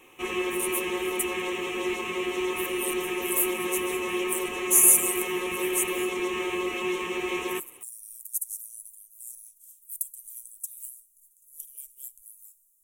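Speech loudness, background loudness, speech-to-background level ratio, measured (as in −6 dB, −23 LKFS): −26.0 LKFS, −29.5 LKFS, 3.5 dB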